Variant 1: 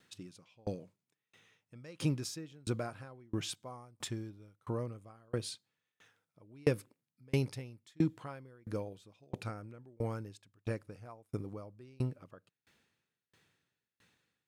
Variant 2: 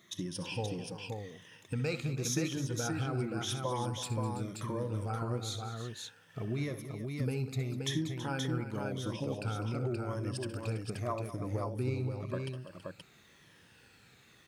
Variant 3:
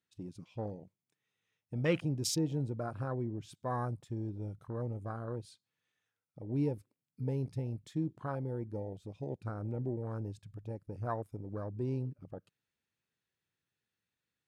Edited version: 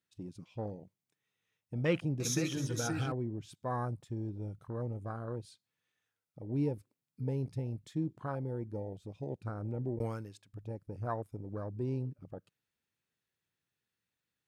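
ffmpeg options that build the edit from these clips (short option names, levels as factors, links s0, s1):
-filter_complex "[2:a]asplit=3[s0][s1][s2];[s0]atrim=end=2.202[s3];[1:a]atrim=start=2.198:end=3.122[s4];[s1]atrim=start=3.118:end=9.992[s5];[0:a]atrim=start=9.988:end=10.532[s6];[s2]atrim=start=10.528[s7];[s3][s4]acrossfade=d=0.004:c1=hsin:c2=hsin[s8];[s8][s5]acrossfade=d=0.004:c1=hsin:c2=hsin[s9];[s9][s6]acrossfade=d=0.004:c1=hsin:c2=hsin[s10];[s10][s7]acrossfade=d=0.004:c1=hsin:c2=hsin"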